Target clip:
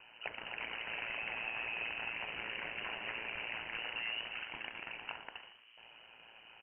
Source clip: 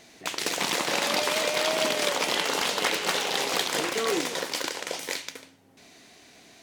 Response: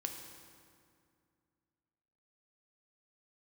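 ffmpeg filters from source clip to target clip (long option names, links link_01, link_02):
-filter_complex "[0:a]bandreject=frequency=2000:width=5.6,acrossover=split=170[link_01][link_02];[link_01]acrusher=bits=3:mix=0:aa=0.000001[link_03];[link_03][link_02]amix=inputs=2:normalize=0,volume=20dB,asoftclip=hard,volume=-20dB,acompressor=threshold=-37dB:ratio=4,aeval=exprs='val(0)*sin(2*PI*57*n/s)':channel_layout=same,lowpass=frequency=2700:width_type=q:width=0.5098,lowpass=frequency=2700:width_type=q:width=0.6013,lowpass=frequency=2700:width_type=q:width=0.9,lowpass=frequency=2700:width_type=q:width=2.563,afreqshift=-3200,asplit=6[link_04][link_05][link_06][link_07][link_08][link_09];[link_05]adelay=116,afreqshift=83,volume=-14dB[link_10];[link_06]adelay=232,afreqshift=166,volume=-20dB[link_11];[link_07]adelay=348,afreqshift=249,volume=-26dB[link_12];[link_08]adelay=464,afreqshift=332,volume=-32.1dB[link_13];[link_09]adelay=580,afreqshift=415,volume=-38.1dB[link_14];[link_04][link_10][link_11][link_12][link_13][link_14]amix=inputs=6:normalize=0,volume=1.5dB"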